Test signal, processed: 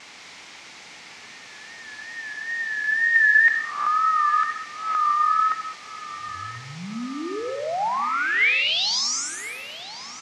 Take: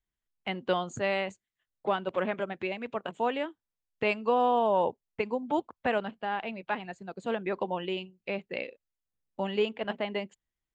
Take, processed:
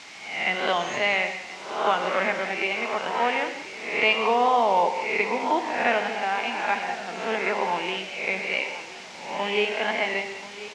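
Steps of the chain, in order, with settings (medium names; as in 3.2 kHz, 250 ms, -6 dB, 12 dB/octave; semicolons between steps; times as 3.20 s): reverse spectral sustain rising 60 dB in 0.74 s; added noise brown -46 dBFS; in parallel at -5 dB: word length cut 6-bit, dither triangular; on the sum: wow and flutter 71 cents; cabinet simulation 290–6100 Hz, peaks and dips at 360 Hz -4 dB, 550 Hz -5 dB, 830 Hz +3 dB, 2.2 kHz +8 dB; on a send: feedback delay 1033 ms, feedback 53%, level -16 dB; on the sum: gated-style reverb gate 240 ms flat, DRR 6.5 dB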